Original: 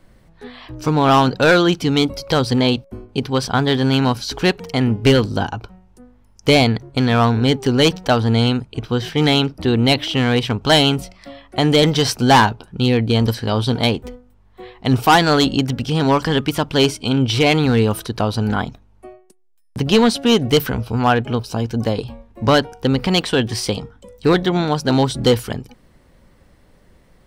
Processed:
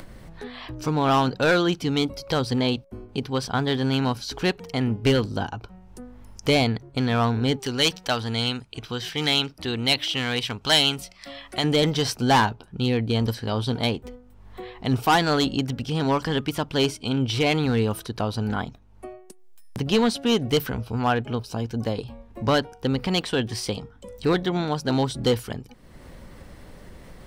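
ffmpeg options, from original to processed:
ffmpeg -i in.wav -filter_complex "[0:a]asettb=1/sr,asplit=3[link_01][link_02][link_03];[link_01]atrim=end=7.594[link_04];[link_02]atrim=start=7.59:end=11.64,asetpts=PTS-STARTPTS,afade=type=in:duration=0.004:curve=qsin,afade=type=out:start_time=4.046:duration=0.004:curve=qsin,tiltshelf=frequency=1200:gain=-6[link_05];[link_03]atrim=start=11.636[link_06];[link_04][link_05]acrossfade=duration=0.004:curve1=hsin:curve2=qsin[link_07];[link_07][link_06]acrossfade=duration=0.004:curve1=qsin:curve2=hsin,acompressor=mode=upward:threshold=-22dB:ratio=2.5,volume=-7dB" out.wav

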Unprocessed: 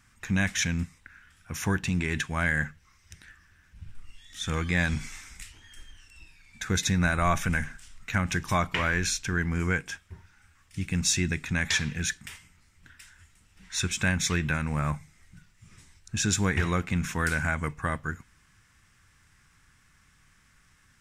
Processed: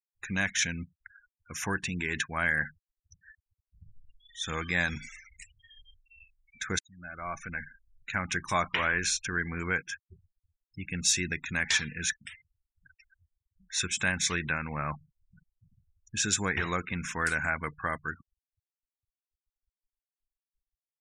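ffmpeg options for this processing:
ffmpeg -i in.wav -filter_complex "[0:a]asplit=2[link_01][link_02];[link_01]atrim=end=6.79,asetpts=PTS-STARTPTS,afade=type=out:start_time=6.786:duration=0.004:curve=hsin[link_03];[link_02]atrim=start=6.79,asetpts=PTS-STARTPTS,afade=type=in:duration=1.59[link_04];[link_03][link_04]concat=n=2:v=0:a=1,afftfilt=real='re*gte(hypot(re,im),0.0112)':imag='im*gte(hypot(re,im),0.0112)':win_size=1024:overlap=0.75,lowshelf=frequency=260:gain=-11.5" out.wav

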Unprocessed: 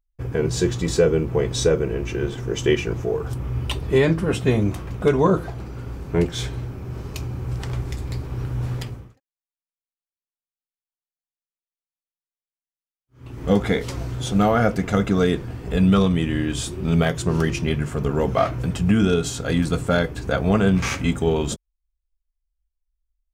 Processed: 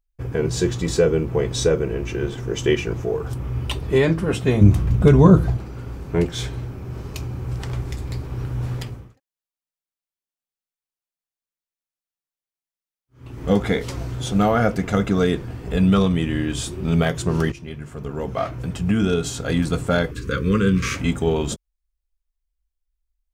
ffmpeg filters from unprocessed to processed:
ffmpeg -i in.wav -filter_complex "[0:a]asettb=1/sr,asplit=3[link_01][link_02][link_03];[link_01]atrim=end=4.614[link_04];[link_02]atrim=start=4.61:end=5.57,asetpts=PTS-STARTPTS,afade=type=in:duration=0.004:curve=qsin,afade=type=out:start_time=0.956:duration=0.004:curve=qsin,bass=frequency=250:gain=13,treble=frequency=4000:gain=2[link_05];[link_03]atrim=start=5.566[link_06];[link_04][link_05]acrossfade=duration=0.004:curve1=hsin:curve2=qsin[link_07];[link_07][link_06]acrossfade=duration=0.004:curve1=qsin:curve2=hsin,asettb=1/sr,asplit=3[link_08][link_09][link_10];[link_08]atrim=end=20.114[link_11];[link_09]atrim=start=20.11:end=20.96,asetpts=PTS-STARTPTS,afade=type=in:duration=0.004:curve=qsin,afade=type=out:start_time=0.846:duration=0.004:curve=qsin,asuperstop=centerf=740:order=8:qfactor=1.4[link_12];[link_10]atrim=start=20.956[link_13];[link_11][link_12]acrossfade=duration=0.004:curve1=hsin:curve2=qsin[link_14];[link_14][link_13]acrossfade=duration=0.004:curve1=qsin:curve2=hsin,asplit=2[link_15][link_16];[link_15]atrim=end=17.52,asetpts=PTS-STARTPTS,afade=type=out:start_time=17.516:duration=0.004:curve=hsin:silence=0.188365[link_17];[link_16]atrim=start=17.52,asetpts=PTS-STARTPTS,afade=type=in:duration=1.89:silence=0.188365[link_18];[link_17][link_18]concat=n=2:v=0:a=1" out.wav

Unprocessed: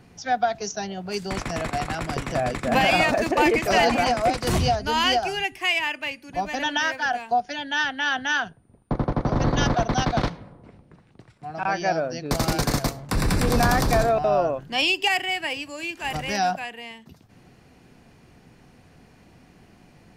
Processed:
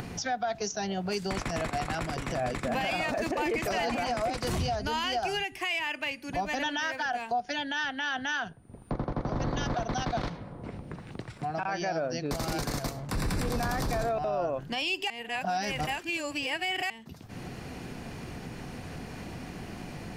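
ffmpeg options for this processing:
ffmpeg -i in.wav -filter_complex "[0:a]asplit=3[link_01][link_02][link_03];[link_01]atrim=end=15.102[link_04];[link_02]atrim=start=15.098:end=16.902,asetpts=PTS-STARTPTS,areverse[link_05];[link_03]atrim=start=16.898[link_06];[link_04][link_05]acrossfade=duration=0.004:curve1=hsin:curve2=hsin[link_07];[link_07][link_06]acrossfade=duration=0.004:curve1=hsin:curve2=hsin,acompressor=mode=upward:threshold=-28dB:ratio=2.5,alimiter=limit=-22dB:level=0:latency=1:release=113" out.wav

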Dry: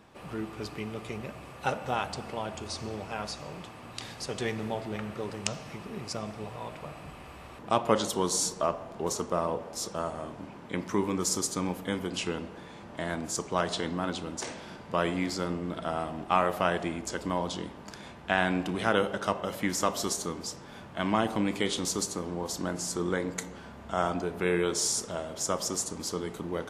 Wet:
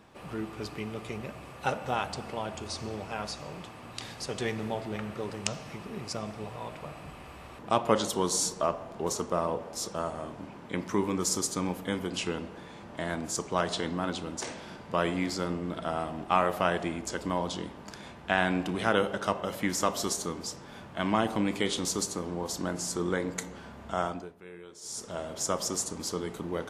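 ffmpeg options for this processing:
ffmpeg -i in.wav -filter_complex "[0:a]asplit=3[link_01][link_02][link_03];[link_01]atrim=end=24.35,asetpts=PTS-STARTPTS,afade=type=out:start_time=23.91:duration=0.44:silence=0.1[link_04];[link_02]atrim=start=24.35:end=24.81,asetpts=PTS-STARTPTS,volume=-20dB[link_05];[link_03]atrim=start=24.81,asetpts=PTS-STARTPTS,afade=type=in:duration=0.44:silence=0.1[link_06];[link_04][link_05][link_06]concat=n=3:v=0:a=1" out.wav

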